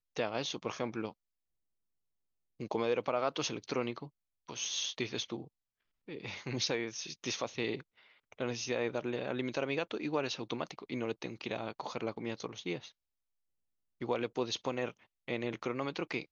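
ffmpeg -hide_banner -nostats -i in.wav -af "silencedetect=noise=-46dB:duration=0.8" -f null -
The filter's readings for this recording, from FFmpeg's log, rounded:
silence_start: 1.11
silence_end: 2.60 | silence_duration: 1.49
silence_start: 12.89
silence_end: 14.01 | silence_duration: 1.12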